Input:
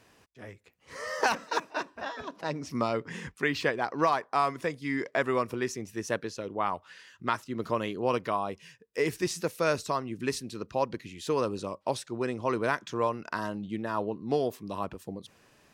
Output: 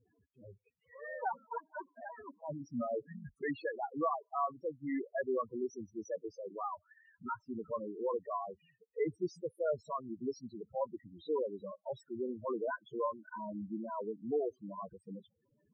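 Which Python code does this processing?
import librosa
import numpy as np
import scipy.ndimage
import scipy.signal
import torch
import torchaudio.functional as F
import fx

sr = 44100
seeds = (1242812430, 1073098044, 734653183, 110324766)

y = fx.transient(x, sr, attack_db=-3, sustain_db=-7)
y = fx.spec_topn(y, sr, count=4)
y = y * 10.0 ** (-3.0 / 20.0)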